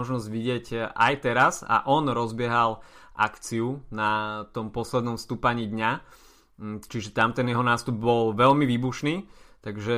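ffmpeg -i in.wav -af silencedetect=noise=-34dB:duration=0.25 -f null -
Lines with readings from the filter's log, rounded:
silence_start: 2.75
silence_end: 3.19 | silence_duration: 0.44
silence_start: 5.98
silence_end: 6.62 | silence_duration: 0.63
silence_start: 9.21
silence_end: 9.66 | silence_duration: 0.45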